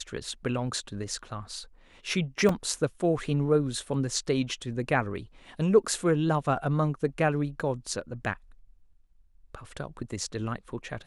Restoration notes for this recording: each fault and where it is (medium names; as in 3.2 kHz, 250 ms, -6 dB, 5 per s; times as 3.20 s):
2.49 s: dropout 2.8 ms